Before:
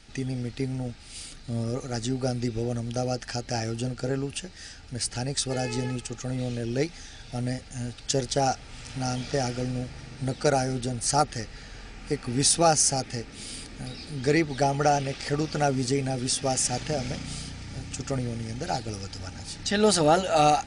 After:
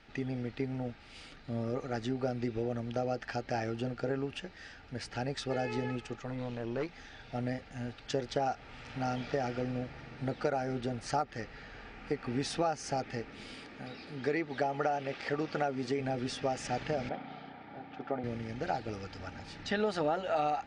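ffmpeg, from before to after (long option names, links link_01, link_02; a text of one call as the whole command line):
ffmpeg -i in.wav -filter_complex "[0:a]asettb=1/sr,asplit=3[link_01][link_02][link_03];[link_01]atrim=end=6.164[link_04];[link_02]atrim=start=6.16:end=6.98,asetpts=PTS-STARTPTS,afade=type=in:duration=0.004:curve=qsin,afade=type=out:start_time=0.816:duration=0.004:curve=qsin,aeval=exprs='(tanh(20*val(0)+0.5)-tanh(0.5))/20':channel_layout=same[link_05];[link_03]atrim=start=6.976[link_06];[link_04][link_05]acrossfade=duration=0.004:curve1=hsin:curve2=qsin[link_07];[link_07][link_06]acrossfade=duration=0.004:curve1=qsin:curve2=hsin,asettb=1/sr,asplit=3[link_08][link_09][link_10];[link_08]atrim=end=13.544[link_11];[link_09]atrim=start=13.54:end=16,asetpts=PTS-STARTPTS,afade=type=in:duration=0.004:curve=qsin,afade=type=out:start_time=2.456:duration=0.004:curve=qsin,highpass=frequency=170:poles=1[link_12];[link_10]atrim=start=15.996[link_13];[link_11][link_12]acrossfade=duration=0.004:curve1=hsin:curve2=qsin[link_14];[link_14][link_13]acrossfade=duration=0.004:curve1=qsin:curve2=hsin,asettb=1/sr,asplit=3[link_15][link_16][link_17];[link_15]atrim=end=17.094[link_18];[link_16]atrim=start=17.09:end=18.24,asetpts=PTS-STARTPTS,afade=type=in:duration=0.004:curve=qsin,afade=type=out:start_time=1.146:duration=0.004:curve=qsin,highpass=240,equalizer=frequency=510:width_type=q:width=4:gain=-3,equalizer=frequency=760:width_type=q:width=4:gain=9,equalizer=frequency=1100:width_type=q:width=4:gain=-3,equalizer=frequency=1900:width_type=q:width=4:gain=-5,equalizer=frequency=2700:width_type=q:width=4:gain=-9,lowpass=frequency=3200:width=0.5412,lowpass=frequency=3200:width=1.3066[link_19];[link_17]atrim=start=18.236[link_20];[link_18][link_19]acrossfade=duration=0.004:curve1=hsin:curve2=qsin[link_21];[link_21][link_20]acrossfade=duration=0.004:curve1=qsin:curve2=hsin,lowpass=2400,lowshelf=frequency=190:gain=-11,acompressor=threshold=-28dB:ratio=6" out.wav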